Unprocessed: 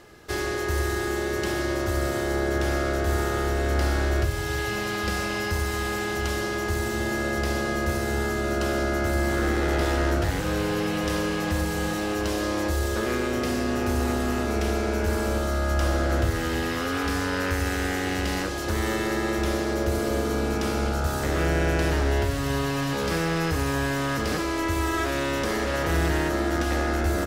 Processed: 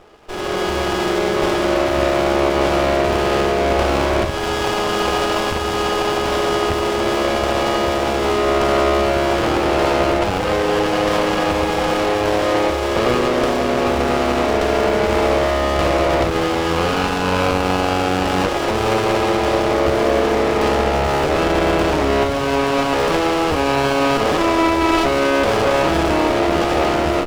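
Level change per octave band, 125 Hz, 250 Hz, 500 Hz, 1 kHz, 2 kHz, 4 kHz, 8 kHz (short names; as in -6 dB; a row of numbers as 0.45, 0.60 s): +1.5, +7.0, +11.0, +12.0, +6.0, +9.5, +3.5 dB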